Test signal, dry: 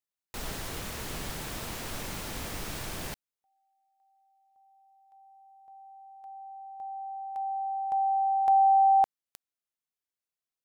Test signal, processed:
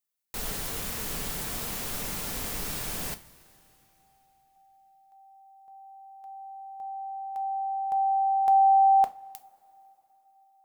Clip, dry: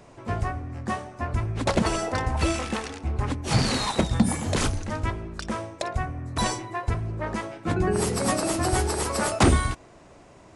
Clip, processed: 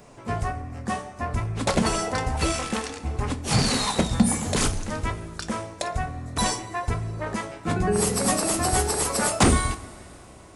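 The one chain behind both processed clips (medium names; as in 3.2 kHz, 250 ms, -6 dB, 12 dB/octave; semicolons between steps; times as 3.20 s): treble shelf 8 kHz +10 dB; two-slope reverb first 0.26 s, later 3.5 s, from -21 dB, DRR 8.5 dB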